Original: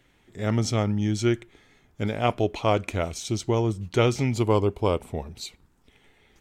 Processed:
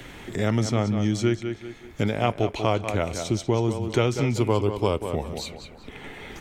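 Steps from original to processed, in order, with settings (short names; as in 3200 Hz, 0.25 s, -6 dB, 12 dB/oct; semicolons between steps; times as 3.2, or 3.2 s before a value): tape echo 0.189 s, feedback 27%, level -9 dB, low-pass 3600 Hz; three-band squash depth 70%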